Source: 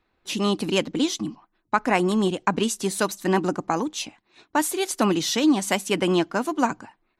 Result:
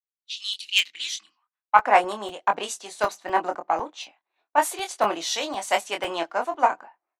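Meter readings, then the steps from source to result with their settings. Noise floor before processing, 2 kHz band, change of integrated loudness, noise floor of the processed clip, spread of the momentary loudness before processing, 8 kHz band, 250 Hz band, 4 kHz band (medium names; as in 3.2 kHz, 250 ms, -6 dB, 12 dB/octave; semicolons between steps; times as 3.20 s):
-73 dBFS, +1.5 dB, -1.0 dB, under -85 dBFS, 8 LU, -4.0 dB, -16.0 dB, +1.5 dB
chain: single-diode clipper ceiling -10 dBFS; dynamic bell 2.3 kHz, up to +3 dB, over -38 dBFS, Q 0.88; level-controlled noise filter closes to 2 kHz, open at -18.5 dBFS; bass shelf 260 Hz +7.5 dB; band-stop 5.1 kHz, Q 30; doubling 24 ms -6 dB; high-pass sweep 3.7 kHz -> 680 Hz, 0.50–1.93 s; crackling interface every 0.25 s, samples 64, zero, from 0.54 s; three bands expanded up and down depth 70%; trim -4.5 dB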